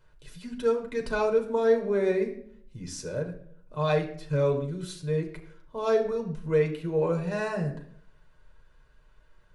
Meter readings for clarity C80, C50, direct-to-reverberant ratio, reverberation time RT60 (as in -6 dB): 13.0 dB, 10.5 dB, 1.5 dB, 0.60 s